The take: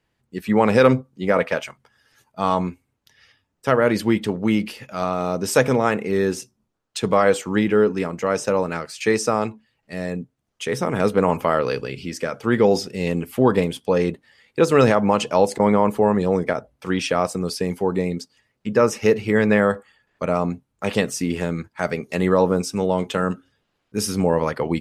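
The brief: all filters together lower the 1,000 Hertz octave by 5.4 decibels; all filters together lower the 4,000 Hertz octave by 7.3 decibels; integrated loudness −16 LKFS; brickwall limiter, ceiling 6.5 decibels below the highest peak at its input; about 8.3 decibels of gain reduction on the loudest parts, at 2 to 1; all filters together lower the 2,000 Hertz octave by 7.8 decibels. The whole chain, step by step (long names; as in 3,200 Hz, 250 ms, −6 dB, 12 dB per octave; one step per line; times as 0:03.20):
parametric band 1,000 Hz −5 dB
parametric band 2,000 Hz −6.5 dB
parametric band 4,000 Hz −8 dB
downward compressor 2 to 1, threshold −27 dBFS
level +15 dB
brickwall limiter −3.5 dBFS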